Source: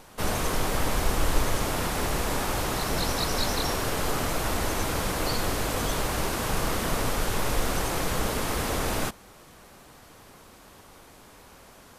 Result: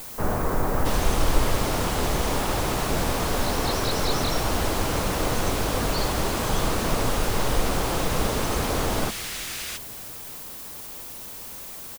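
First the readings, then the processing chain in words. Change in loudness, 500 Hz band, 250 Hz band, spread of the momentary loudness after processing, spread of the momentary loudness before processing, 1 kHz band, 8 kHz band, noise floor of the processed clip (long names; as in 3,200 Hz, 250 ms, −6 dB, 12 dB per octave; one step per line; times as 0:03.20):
+1.5 dB, +3.5 dB, +3.5 dB, 11 LU, 2 LU, +2.5 dB, +1.5 dB, −38 dBFS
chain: multiband delay without the direct sound lows, highs 670 ms, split 1,800 Hz
background noise violet −40 dBFS
on a send: echo with shifted repeats 336 ms, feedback 58%, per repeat −43 Hz, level −20.5 dB
on the sum: slew-rate limiting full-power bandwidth 140 Hz
level +3.5 dB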